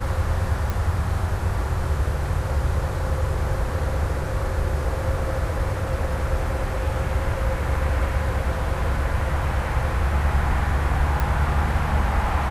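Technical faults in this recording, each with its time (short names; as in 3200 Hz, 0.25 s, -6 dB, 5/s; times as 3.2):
0.7 pop
11.2 pop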